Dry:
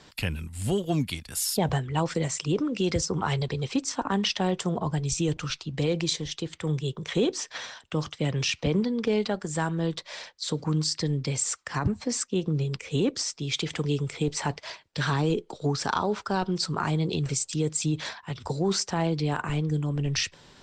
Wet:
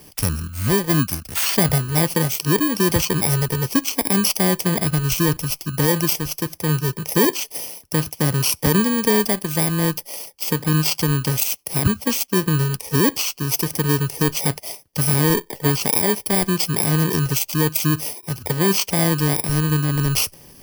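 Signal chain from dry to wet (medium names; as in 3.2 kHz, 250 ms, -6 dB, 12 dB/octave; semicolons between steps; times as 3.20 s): bit-reversed sample order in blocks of 32 samples; trim +8 dB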